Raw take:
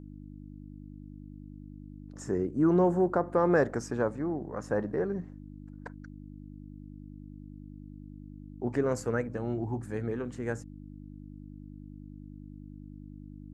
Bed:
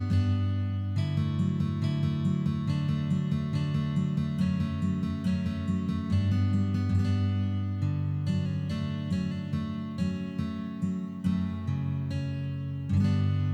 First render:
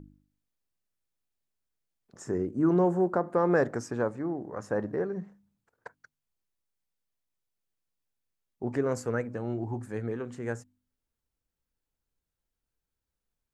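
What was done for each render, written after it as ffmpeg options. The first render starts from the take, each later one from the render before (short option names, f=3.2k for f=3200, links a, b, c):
-af "bandreject=f=50:t=h:w=4,bandreject=f=100:t=h:w=4,bandreject=f=150:t=h:w=4,bandreject=f=200:t=h:w=4,bandreject=f=250:t=h:w=4,bandreject=f=300:t=h:w=4"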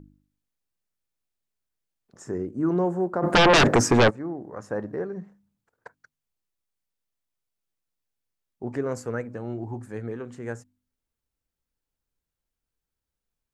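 -filter_complex "[0:a]asplit=3[a][b][c];[a]afade=t=out:st=3.22:d=0.02[d];[b]aeval=exprs='0.237*sin(PI/2*5.62*val(0)/0.237)':c=same,afade=t=in:st=3.22:d=0.02,afade=t=out:st=4.09:d=0.02[e];[c]afade=t=in:st=4.09:d=0.02[f];[d][e][f]amix=inputs=3:normalize=0"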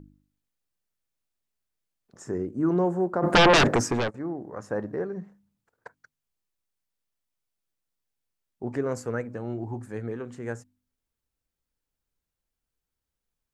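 -filter_complex "[0:a]asplit=2[a][b];[a]atrim=end=4.14,asetpts=PTS-STARTPTS,afade=t=out:st=3.44:d=0.7:silence=0.188365[c];[b]atrim=start=4.14,asetpts=PTS-STARTPTS,afade=t=in:d=0.004:c=hsin:silence=0.188365[d];[c][d]concat=n=2:v=0:a=1"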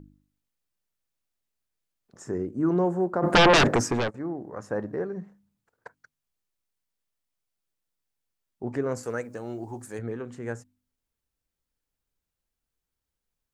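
-filter_complex "[0:a]asettb=1/sr,asplit=3[a][b][c];[a]atrim=end=9.034[d];[b]atrim=start=9.03:end=9.99,asetpts=PTS-STARTPTS,afade=t=in:d=0.004:c=qsin,afade=t=out:st=0.956:d=0.004:c=qsin,bass=f=250:g=-7,treble=f=4k:g=13[e];[c]atrim=start=9.986[f];[d][e]acrossfade=d=0.004:c1=hsin:c2=qsin[g];[g][f]acrossfade=d=0.004:c1=qsin:c2=hsin"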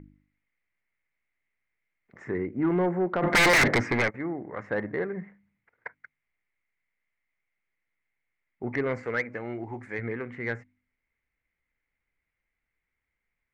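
-af "lowpass=f=2.1k:t=q:w=11,asoftclip=type=tanh:threshold=-17dB"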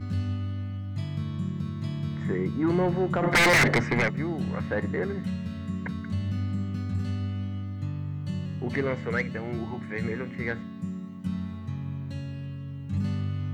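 -filter_complex "[1:a]volume=-3.5dB[a];[0:a][a]amix=inputs=2:normalize=0"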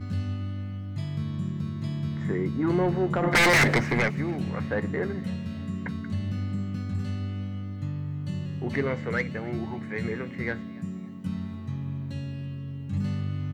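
-filter_complex "[0:a]asplit=2[a][b];[b]adelay=14,volume=-14dB[c];[a][c]amix=inputs=2:normalize=0,asplit=4[d][e][f][g];[e]adelay=284,afreqshift=99,volume=-24dB[h];[f]adelay=568,afreqshift=198,volume=-32dB[i];[g]adelay=852,afreqshift=297,volume=-39.9dB[j];[d][h][i][j]amix=inputs=4:normalize=0"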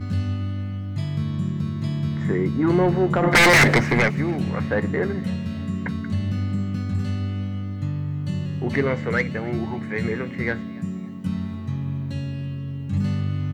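-af "volume=5.5dB"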